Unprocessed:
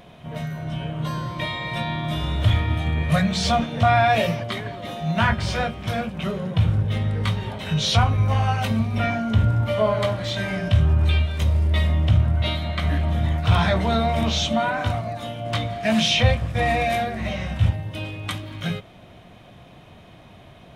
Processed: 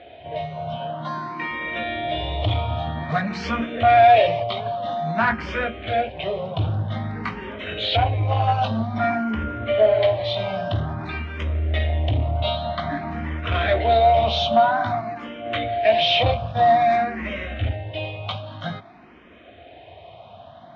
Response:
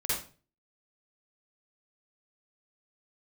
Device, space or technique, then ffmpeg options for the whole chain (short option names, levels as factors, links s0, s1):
barber-pole phaser into a guitar amplifier: -filter_complex "[0:a]asettb=1/sr,asplit=3[s0][s1][s2];[s0]atrim=end=0.764[s3];[s1]atrim=start=0.76:end=1.51,asetpts=PTS-STARTPTS,afade=t=in:d=0.004:c=qsin,afade=t=out:st=0.746:d=0.004:c=qsin,highpass=180[s4];[s2]atrim=start=1.506[s5];[s3][s4]acrossfade=d=0.004:c1=hsin:c2=qsin[s6];[s6][s5]acrossfade=d=0.004:c1=qsin:c2=hsin,asplit=2[s7][s8];[s8]afreqshift=0.51[s9];[s7][s9]amix=inputs=2:normalize=1,asoftclip=type=tanh:threshold=0.168,highpass=83,equalizer=f=130:t=q:w=4:g=-9,equalizer=f=180:t=q:w=4:g=-9,equalizer=f=690:t=q:w=4:g=8,lowpass=f=4000:w=0.5412,lowpass=f=4000:w=1.3066,volume=1.58"